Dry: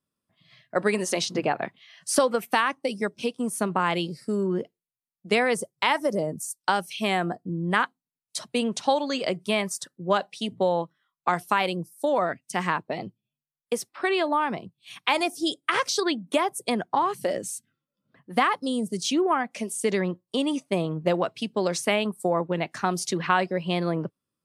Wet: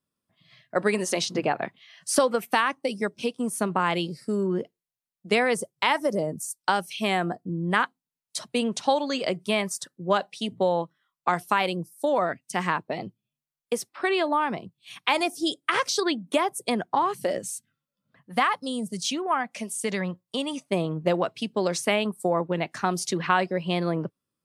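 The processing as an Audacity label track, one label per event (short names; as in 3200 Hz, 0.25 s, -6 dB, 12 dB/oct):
17.390000	20.700000	bell 350 Hz -9 dB 0.78 oct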